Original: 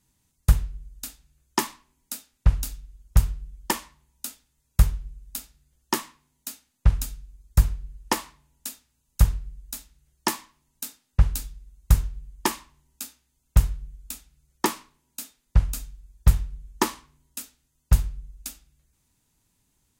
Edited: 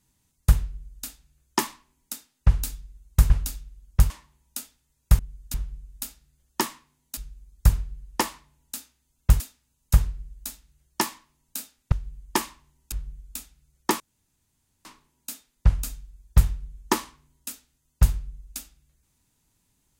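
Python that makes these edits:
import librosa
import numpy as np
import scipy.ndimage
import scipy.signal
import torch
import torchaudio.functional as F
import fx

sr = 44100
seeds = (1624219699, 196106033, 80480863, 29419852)

y = fx.edit(x, sr, fx.duplicate(start_s=0.71, length_s=0.35, to_s=4.87),
    fx.swap(start_s=2.13, length_s=0.34, other_s=10.85, other_length_s=1.17),
    fx.cut(start_s=3.27, length_s=0.51),
    fx.cut(start_s=6.5, length_s=0.59),
    fx.move(start_s=13.02, length_s=0.65, to_s=8.67),
    fx.insert_room_tone(at_s=14.75, length_s=0.85), tone=tone)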